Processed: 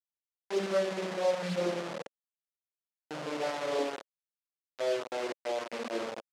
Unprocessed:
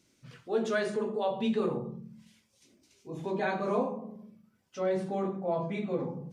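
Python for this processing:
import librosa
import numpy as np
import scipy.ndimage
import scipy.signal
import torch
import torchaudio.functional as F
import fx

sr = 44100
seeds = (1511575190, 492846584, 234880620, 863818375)

y = fx.vocoder_glide(x, sr, note=56, semitones=-11)
y = fx.quant_dither(y, sr, seeds[0], bits=6, dither='none')
y = fx.bandpass_edges(y, sr, low_hz=340.0, high_hz=6300.0)
y = fx.peak_eq(y, sr, hz=550.0, db=6.5, octaves=0.44)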